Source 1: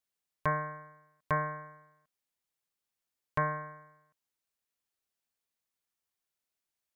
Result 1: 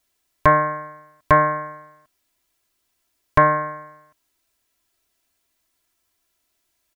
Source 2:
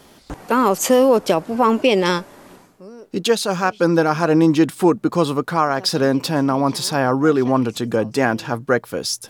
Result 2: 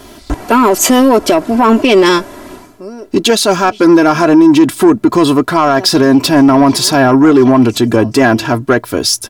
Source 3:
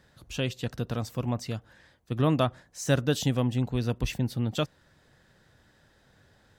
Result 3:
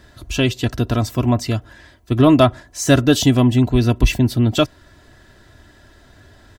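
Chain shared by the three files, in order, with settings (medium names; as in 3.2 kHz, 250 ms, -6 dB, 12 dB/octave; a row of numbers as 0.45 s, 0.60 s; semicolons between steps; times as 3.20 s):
bass shelf 220 Hz +5 dB; comb 3 ms, depth 63%; peak limiter -7.5 dBFS; saturation -10.5 dBFS; peak normalisation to -1.5 dBFS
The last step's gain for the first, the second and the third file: +14.5 dB, +10.0 dB, +11.0 dB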